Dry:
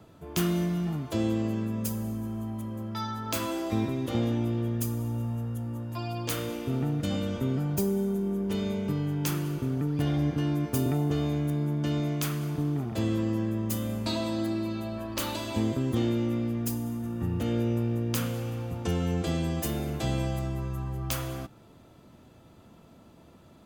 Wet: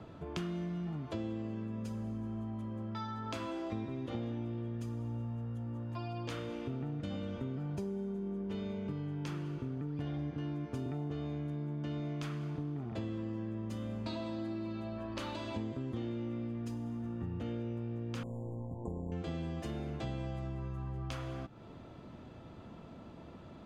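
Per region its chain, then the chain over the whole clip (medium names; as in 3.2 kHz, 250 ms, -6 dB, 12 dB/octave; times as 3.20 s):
18.23–19.12 s: AM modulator 120 Hz, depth 55% + brick-wall FIR band-stop 1.1–6.7 kHz
whole clip: Bessel low-pass 3.3 kHz, order 2; compression 3:1, threshold -44 dBFS; trim +3.5 dB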